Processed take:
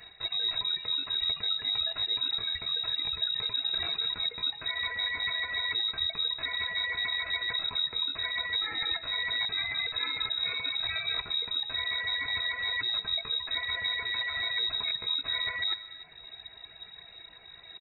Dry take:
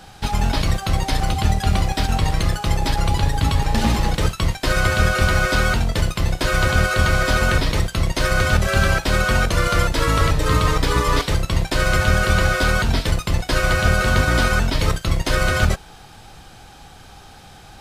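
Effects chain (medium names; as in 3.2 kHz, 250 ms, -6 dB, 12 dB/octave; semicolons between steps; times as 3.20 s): reverb removal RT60 0.7 s; inverse Chebyshev band-stop 100–640 Hz, stop band 40 dB; comb 4.1 ms, depth 40%; dynamic bell 1.4 kHz, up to +4 dB, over -37 dBFS, Q 7.9; reverse; compression 12:1, threshold -26 dBFS, peak gain reduction 13.5 dB; reverse; pitch shift +4 st; echo from a far wall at 50 m, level -17 dB; reverberation RT60 1.2 s, pre-delay 90 ms, DRR 14 dB; frequency inversion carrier 3.8 kHz; trim -3.5 dB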